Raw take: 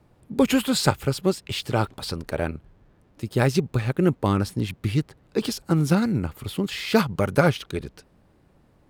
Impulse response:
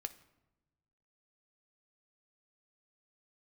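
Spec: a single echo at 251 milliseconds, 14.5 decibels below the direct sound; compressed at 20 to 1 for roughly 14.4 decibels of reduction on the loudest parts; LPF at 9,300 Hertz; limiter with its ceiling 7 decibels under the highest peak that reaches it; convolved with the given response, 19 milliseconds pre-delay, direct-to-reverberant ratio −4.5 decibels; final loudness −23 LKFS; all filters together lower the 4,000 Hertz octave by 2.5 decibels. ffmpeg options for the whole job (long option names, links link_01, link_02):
-filter_complex "[0:a]lowpass=9300,equalizer=frequency=4000:width_type=o:gain=-3,acompressor=threshold=-28dB:ratio=20,alimiter=limit=-24dB:level=0:latency=1,aecho=1:1:251:0.188,asplit=2[link_01][link_02];[1:a]atrim=start_sample=2205,adelay=19[link_03];[link_02][link_03]afir=irnorm=-1:irlink=0,volume=7dB[link_04];[link_01][link_04]amix=inputs=2:normalize=0,volume=7.5dB"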